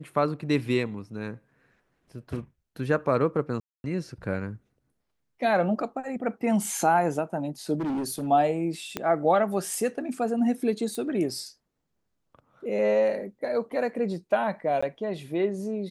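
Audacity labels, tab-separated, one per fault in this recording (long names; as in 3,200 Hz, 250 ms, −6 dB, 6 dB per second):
3.600000	3.840000	drop-out 241 ms
7.750000	8.280000	clipping −26 dBFS
8.970000	8.970000	click −13 dBFS
10.950000	10.950000	click −21 dBFS
14.810000	14.820000	drop-out 15 ms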